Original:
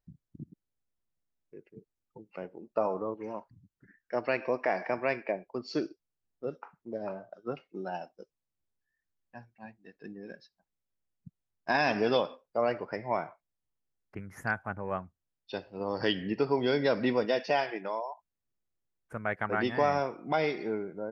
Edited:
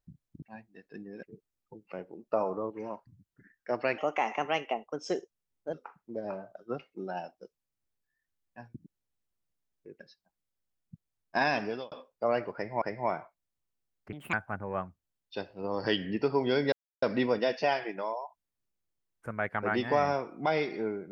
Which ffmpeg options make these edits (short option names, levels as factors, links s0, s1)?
-filter_complex "[0:a]asplit=12[s0][s1][s2][s3][s4][s5][s6][s7][s8][s9][s10][s11];[s0]atrim=end=0.422[s12];[s1]atrim=start=9.518:end=10.332[s13];[s2]atrim=start=1.668:end=4.424[s14];[s3]atrim=start=4.42:end=6.51,asetpts=PTS-STARTPTS,asetrate=52479,aresample=44100[s15];[s4]atrim=start=6.506:end=9.522[s16];[s5]atrim=start=0.418:end=1.672[s17];[s6]atrim=start=10.328:end=12.25,asetpts=PTS-STARTPTS,afade=t=out:st=1.442:d=0.48[s18];[s7]atrim=start=12.25:end=13.152,asetpts=PTS-STARTPTS,afade=t=in:d=0.004:c=hsin[s19];[s8]atrim=start=12.878:end=14.194[s20];[s9]atrim=start=14.19:end=14.5,asetpts=PTS-STARTPTS,asetrate=66150,aresample=44100[s21];[s10]atrim=start=14.496:end=16.89,asetpts=PTS-STARTPTS,afade=t=out:st=2.39:d=0.004:c=hsin,apad=pad_dur=0.3[s22];[s11]atrim=start=16.89,asetpts=PTS-STARTPTS,afade=t=in:d=0.004:c=hsin[s23];[s12][s13]acrossfade=d=0.004:c1=hsin:c2=hsin[s24];[s24][s14]acrossfade=d=0.004:c1=hsin:c2=hsin[s25];[s25][s15]acrossfade=d=0.004:c1=hsin:c2=hsin[s26];[s26][s16]acrossfade=d=0.004:c1=hsin:c2=hsin[s27];[s27][s17]acrossfade=d=0.004:c1=hsin:c2=hsin[s28];[s18][s19]concat=n=2:v=0:a=1[s29];[s28][s29]acrossfade=d=0.004:c1=hsin:c2=hsin[s30];[s30][s20]acrossfade=d=0.004:c1=hsin:c2=hsin[s31];[s31][s21]acrossfade=d=0.004:c1=hsin:c2=hsin[s32];[s22][s23]concat=n=2:v=0:a=1[s33];[s32][s33]acrossfade=d=0.004:c1=hsin:c2=hsin"